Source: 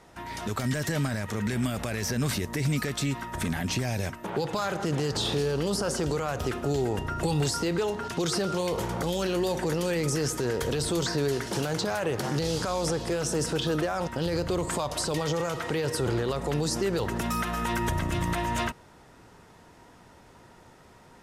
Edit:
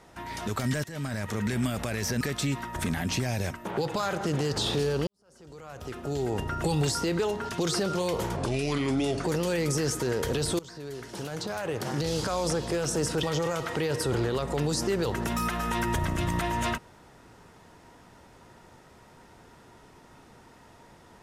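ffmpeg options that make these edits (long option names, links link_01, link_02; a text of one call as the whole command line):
ffmpeg -i in.wav -filter_complex "[0:a]asplit=8[link_01][link_02][link_03][link_04][link_05][link_06][link_07][link_08];[link_01]atrim=end=0.84,asetpts=PTS-STARTPTS,afade=type=out:start_time=0.836:duration=0.004:curve=hsin:silence=0.105925[link_09];[link_02]atrim=start=0.84:end=2.212,asetpts=PTS-STARTPTS,afade=type=in:duration=0.4:silence=0.105925[link_10];[link_03]atrim=start=2.798:end=5.66,asetpts=PTS-STARTPTS,afade=type=out:start_time=2.858:duration=0.004:curve=hsin[link_11];[link_04]atrim=start=5.66:end=8.954,asetpts=PTS-STARTPTS,afade=type=in:duration=1.33:curve=qua[link_12];[link_05]atrim=start=8.95:end=9.62,asetpts=PTS-STARTPTS,asetrate=33516,aresample=44100[link_13];[link_06]atrim=start=9.616:end=10.97,asetpts=PTS-STARTPTS,afade=type=out:start_time=1.35:duration=0.004:curve=hsin:silence=0.0944061[link_14];[link_07]atrim=start=10.97:end=13.612,asetpts=PTS-STARTPTS,afade=type=in:duration=1.68:silence=0.0944061[link_15];[link_08]atrim=start=15.168[link_16];[link_09][link_10]concat=n=2:v=0:a=1[link_17];[link_11][link_12]concat=n=2:v=0:a=1[link_18];[link_17][link_18]acrossfade=duration=0.004:curve1=hsin:curve2=hsin[link_19];[link_19][link_13]acrossfade=duration=0.004:curve1=hsin:curve2=hsin[link_20];[link_14][link_15]concat=n=2:v=0:a=1[link_21];[link_20][link_21]acrossfade=duration=0.004:curve1=hsin:curve2=hsin[link_22];[link_22][link_16]acrossfade=duration=0.004:curve1=hsin:curve2=hsin" out.wav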